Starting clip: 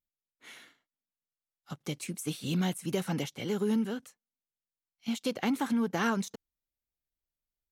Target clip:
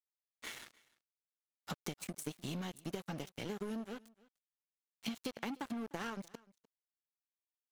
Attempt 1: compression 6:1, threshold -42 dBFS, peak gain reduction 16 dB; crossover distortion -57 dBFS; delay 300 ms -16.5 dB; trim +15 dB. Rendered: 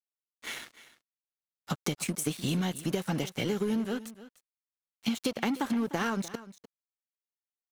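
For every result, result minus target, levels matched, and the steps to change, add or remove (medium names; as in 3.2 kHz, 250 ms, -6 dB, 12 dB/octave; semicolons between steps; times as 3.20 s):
compression: peak gain reduction -8.5 dB; echo-to-direct +7 dB
change: compression 6:1, threshold -52.5 dBFS, peak gain reduction 25 dB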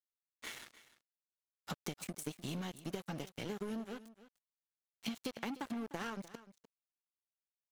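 echo-to-direct +7 dB
change: delay 300 ms -23.5 dB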